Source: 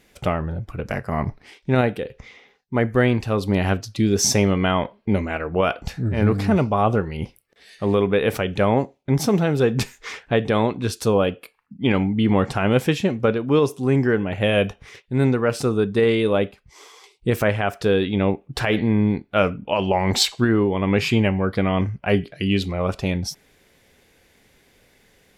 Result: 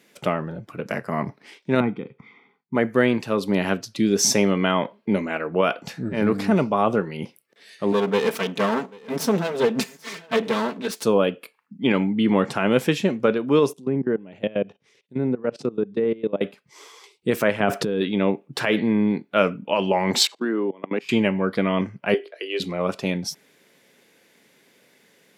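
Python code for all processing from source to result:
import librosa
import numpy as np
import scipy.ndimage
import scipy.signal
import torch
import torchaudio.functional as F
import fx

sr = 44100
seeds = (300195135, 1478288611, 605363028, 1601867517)

y = fx.chain(x, sr, fx.spacing_loss(db_at_10k=42),
    fx.comb(ms=0.9, depth=0.83), at=(1.8, 2.75))
y = fx.chain(y, sr, fx.lower_of_two(delay_ms=4.5),
    fx.echo_single(ms=788, db=-23.5), at=(7.92, 11.03))
y = fx.chain(y, sr, fx.peak_eq(hz=1400.0, db=-8.5, octaves=1.7),
    fx.env_lowpass_down(base_hz=1600.0, full_db=-15.5),
    fx.level_steps(step_db=20), at=(13.73, 16.41))
y = fx.chain(y, sr, fx.low_shelf(hz=490.0, db=11.0),
    fx.over_compress(threshold_db=-20.0, ratio=-1.0), at=(17.6, 18.01))
y = fx.chain(y, sr, fx.highpass(hz=230.0, slope=24),
    fx.high_shelf(hz=2100.0, db=-6.5),
    fx.level_steps(step_db=23), at=(20.27, 21.09))
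y = fx.chain(y, sr, fx.steep_highpass(hz=390.0, slope=48),
    fx.tilt_eq(slope=-2.5), at=(22.14, 22.6))
y = scipy.signal.sosfilt(scipy.signal.butter(4, 160.0, 'highpass', fs=sr, output='sos'), y)
y = fx.notch(y, sr, hz=760.0, q=12.0)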